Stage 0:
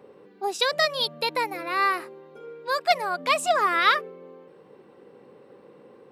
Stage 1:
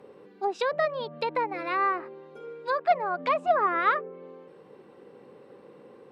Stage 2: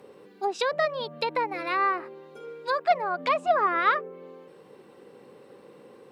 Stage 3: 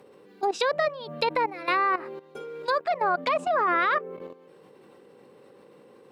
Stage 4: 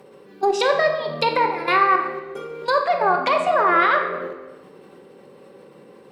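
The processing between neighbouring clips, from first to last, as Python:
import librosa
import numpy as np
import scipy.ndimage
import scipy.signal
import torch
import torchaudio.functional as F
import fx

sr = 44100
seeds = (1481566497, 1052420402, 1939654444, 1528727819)

y1 = fx.env_lowpass_down(x, sr, base_hz=1300.0, full_db=-22.5)
y2 = fx.high_shelf(y1, sr, hz=3900.0, db=11.0)
y3 = fx.level_steps(y2, sr, step_db=15)
y3 = y3 * librosa.db_to_amplitude(7.0)
y4 = fx.room_shoebox(y3, sr, seeds[0], volume_m3=760.0, walls='mixed', distance_m=1.1)
y4 = y4 * librosa.db_to_amplitude(4.5)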